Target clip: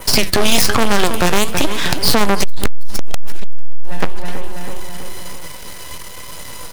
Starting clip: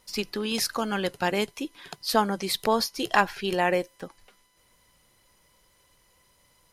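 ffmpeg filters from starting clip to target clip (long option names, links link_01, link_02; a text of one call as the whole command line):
ffmpeg -i in.wav -filter_complex "[0:a]adynamicequalizer=threshold=0.00631:dfrequency=4900:dqfactor=2:tfrequency=4900:tqfactor=2:attack=5:release=100:ratio=0.375:range=2:mode=cutabove:tftype=bell,aeval=exprs='max(val(0),0)':channel_layout=same,flanger=delay=5.8:depth=7.4:regen=65:speed=1.1:shape=triangular,acrossover=split=130|7100[link_01][link_02][link_03];[link_01]acompressor=threshold=-43dB:ratio=4[link_04];[link_02]acompressor=threshold=-43dB:ratio=4[link_05];[link_03]acompressor=threshold=-49dB:ratio=4[link_06];[link_04][link_05][link_06]amix=inputs=3:normalize=0,asplit=3[link_07][link_08][link_09];[link_07]afade=type=out:start_time=2.43:duration=0.02[link_10];[link_08]lowshelf=frequency=120:gain=12,afade=type=in:start_time=2.43:duration=0.02,afade=type=out:start_time=3.91:duration=0.02[link_11];[link_09]afade=type=in:start_time=3.91:duration=0.02[link_12];[link_10][link_11][link_12]amix=inputs=3:normalize=0,asplit=2[link_13][link_14];[link_14]adelay=325,lowpass=frequency=4800:poles=1,volume=-14.5dB,asplit=2[link_15][link_16];[link_16]adelay=325,lowpass=frequency=4800:poles=1,volume=0.53,asplit=2[link_17][link_18];[link_18]adelay=325,lowpass=frequency=4800:poles=1,volume=0.53,asplit=2[link_19][link_20];[link_20]adelay=325,lowpass=frequency=4800:poles=1,volume=0.53,asplit=2[link_21][link_22];[link_22]adelay=325,lowpass=frequency=4800:poles=1,volume=0.53[link_23];[link_13][link_15][link_17][link_19][link_21][link_23]amix=inputs=6:normalize=0,aeval=exprs='(tanh(100*val(0)+0.55)-tanh(0.55))/100':channel_layout=same,acontrast=74,alimiter=level_in=35.5dB:limit=-1dB:release=50:level=0:latency=1,volume=-1dB" out.wav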